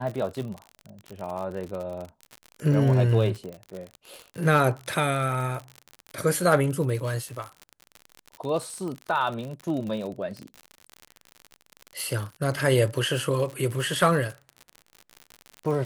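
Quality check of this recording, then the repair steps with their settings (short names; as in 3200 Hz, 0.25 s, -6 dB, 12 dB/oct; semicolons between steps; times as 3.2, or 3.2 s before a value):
crackle 58/s -31 dBFS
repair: de-click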